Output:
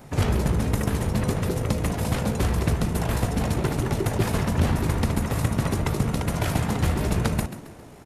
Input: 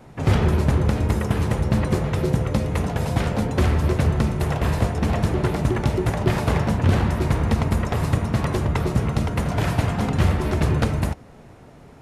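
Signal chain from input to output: treble shelf 6.6 kHz +12 dB; in parallel at +0.5 dB: compression, threshold -26 dBFS, peak gain reduction 13 dB; on the sum: granular stretch 0.67×, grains 38 ms; frequency-shifting echo 135 ms, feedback 42%, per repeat +65 Hz, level -13 dB; trim -5 dB

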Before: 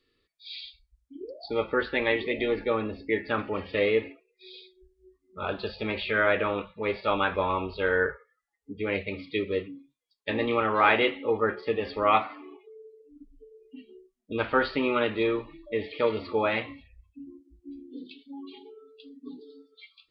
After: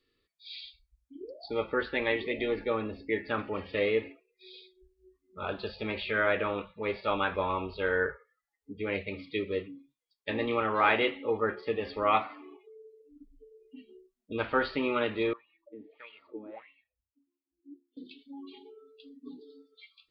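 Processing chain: 15.33–17.97 s: wah-wah 1.6 Hz 250–2900 Hz, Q 7.4; trim -3.5 dB

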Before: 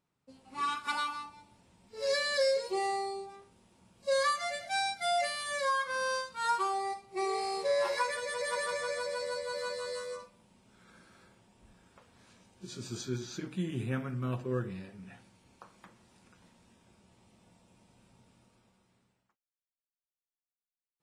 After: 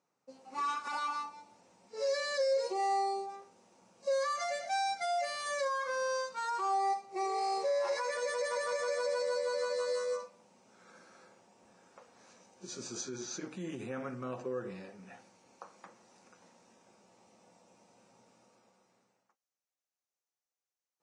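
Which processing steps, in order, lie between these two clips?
peak limiter -30 dBFS, peak gain reduction 10.5 dB; cabinet simulation 230–8600 Hz, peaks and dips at 520 Hz +7 dB, 780 Hz +6 dB, 1.2 kHz +3 dB, 3.3 kHz -6 dB, 6.1 kHz +8 dB

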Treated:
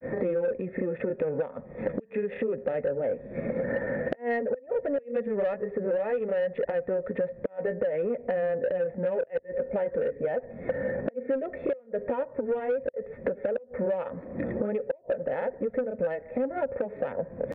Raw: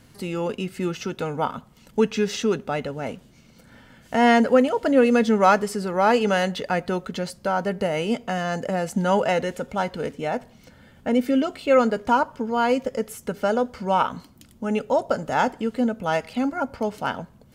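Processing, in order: local Wiener filter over 15 samples; recorder AGC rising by 68 dB/s; cascade formant filter e; inverted gate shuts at -15 dBFS, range -28 dB; granulator 143 ms, grains 16 per s, spray 22 ms, pitch spread up and down by 0 st; saturation -22 dBFS, distortion -17 dB; three bands compressed up and down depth 100%; trim +3 dB

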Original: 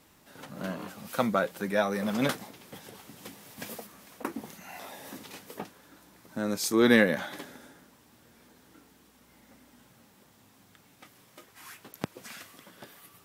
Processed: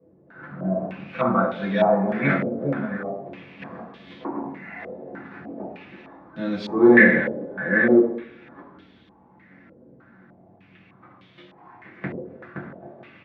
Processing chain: chunks repeated in reverse 615 ms, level -4 dB; bass shelf 97 Hz +5 dB; doubling 22 ms -11 dB; reverberation RT60 0.80 s, pre-delay 3 ms, DRR -7.5 dB; step-sequenced low-pass 3.3 Hz 510–3400 Hz; trim -16 dB

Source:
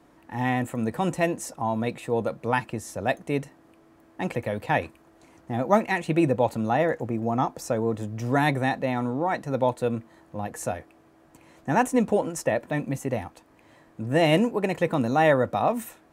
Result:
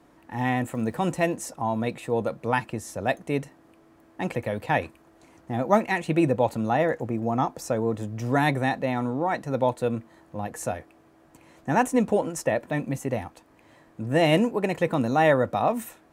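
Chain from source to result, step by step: 0.66–1.34 s: crackle 200 per s -47 dBFS

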